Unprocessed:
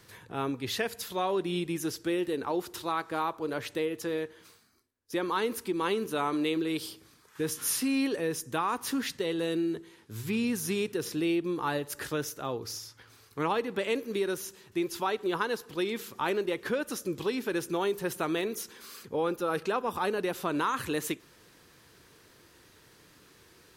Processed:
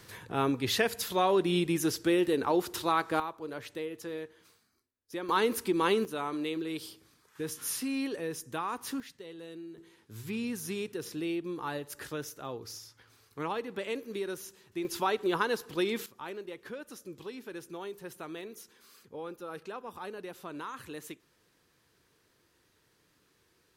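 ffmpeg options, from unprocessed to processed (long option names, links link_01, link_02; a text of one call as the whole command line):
ffmpeg -i in.wav -af "asetnsamples=nb_out_samples=441:pad=0,asendcmd='3.2 volume volume -6.5dB;5.29 volume volume 2.5dB;6.05 volume volume -5dB;9 volume volume -15dB;9.78 volume volume -5.5dB;14.85 volume volume 1dB;16.06 volume volume -11.5dB',volume=3.5dB" out.wav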